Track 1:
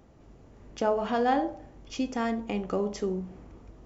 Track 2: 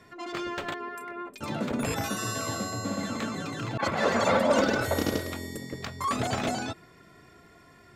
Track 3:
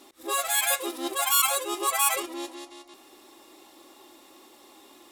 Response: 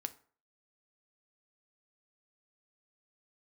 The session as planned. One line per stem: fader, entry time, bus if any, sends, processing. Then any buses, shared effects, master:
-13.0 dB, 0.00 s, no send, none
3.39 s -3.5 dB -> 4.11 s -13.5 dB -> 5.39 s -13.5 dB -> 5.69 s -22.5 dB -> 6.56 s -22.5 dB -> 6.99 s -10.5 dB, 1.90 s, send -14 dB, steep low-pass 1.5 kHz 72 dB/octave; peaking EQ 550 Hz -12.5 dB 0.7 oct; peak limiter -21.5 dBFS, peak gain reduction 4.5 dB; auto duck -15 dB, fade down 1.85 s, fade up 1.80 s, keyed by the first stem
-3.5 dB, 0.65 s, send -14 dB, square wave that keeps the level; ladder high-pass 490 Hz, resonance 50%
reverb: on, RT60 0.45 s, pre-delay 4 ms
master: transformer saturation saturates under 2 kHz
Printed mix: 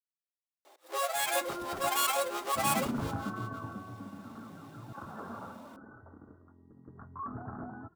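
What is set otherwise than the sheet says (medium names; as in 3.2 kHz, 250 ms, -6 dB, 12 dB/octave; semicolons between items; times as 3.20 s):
stem 1: muted; stem 2: entry 1.90 s -> 1.15 s; master: missing transformer saturation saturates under 2 kHz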